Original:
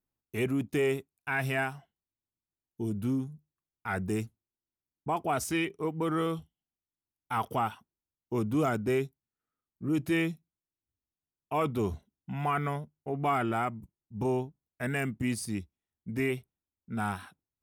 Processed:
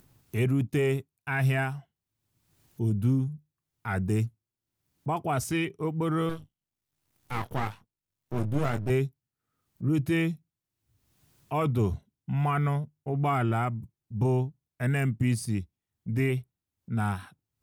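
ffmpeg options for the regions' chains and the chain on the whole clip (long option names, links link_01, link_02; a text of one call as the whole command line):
ffmpeg -i in.wav -filter_complex "[0:a]asettb=1/sr,asplit=3[link_01][link_02][link_03];[link_01]atrim=end=6.294[link_04];[link_02]atrim=start=6.29:end=8.9,asetpts=PTS-STARTPTS,afade=type=in:duration=0.004:curve=qsin,afade=type=out:start_time=2.606:duration=0.004:curve=qsin,asplit=2[link_05][link_06];[link_06]adelay=21,volume=-7dB[link_07];[link_05][link_07]amix=inputs=2:normalize=0,atrim=end_sample=115101,aeval=exprs='max(val(0),0)':channel_layout=same[link_08];[link_03]atrim=start=8.896[link_09];[link_04][link_08]acrossfade=duration=0.004:curve1=hsin:curve2=qsin[link_10];[link_10][link_09]acrossfade=duration=0.004:curve1=qsin:curve2=hsin,equalizer=frequency=120:width_type=o:width=1:gain=11,acompressor=mode=upward:threshold=-41dB:ratio=2.5" out.wav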